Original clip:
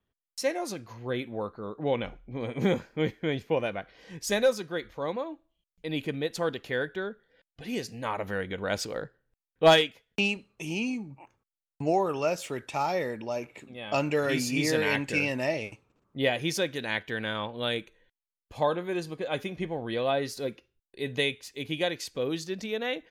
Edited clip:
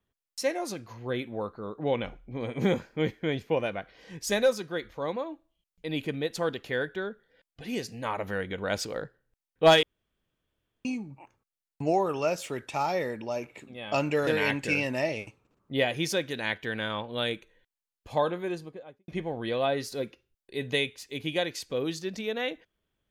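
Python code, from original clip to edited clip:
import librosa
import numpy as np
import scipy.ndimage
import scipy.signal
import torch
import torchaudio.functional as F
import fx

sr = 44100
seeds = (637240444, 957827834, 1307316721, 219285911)

y = fx.studio_fade_out(x, sr, start_s=18.77, length_s=0.76)
y = fx.edit(y, sr, fx.room_tone_fill(start_s=9.83, length_s=1.02),
    fx.cut(start_s=14.27, length_s=0.45), tone=tone)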